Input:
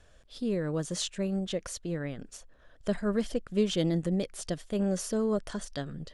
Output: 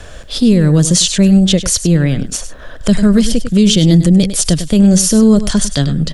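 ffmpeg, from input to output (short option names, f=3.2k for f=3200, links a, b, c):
-filter_complex "[0:a]acrossover=split=230|3000[a][b][c];[b]acompressor=threshold=-56dB:ratio=2[d];[a][d][c]amix=inputs=3:normalize=0,asplit=2[e][f];[f]aecho=0:1:100:0.224[g];[e][g]amix=inputs=2:normalize=0,alimiter=level_in=27.5dB:limit=-1dB:release=50:level=0:latency=1,volume=-1dB"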